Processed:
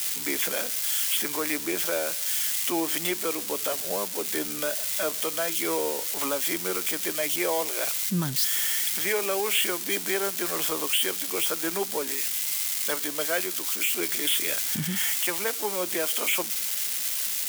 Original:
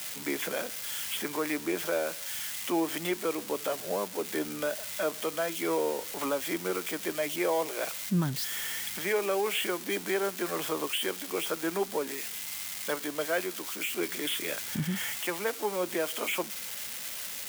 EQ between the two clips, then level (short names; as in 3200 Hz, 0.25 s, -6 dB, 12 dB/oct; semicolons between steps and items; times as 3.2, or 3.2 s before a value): high shelf 2700 Hz +10.5 dB; 0.0 dB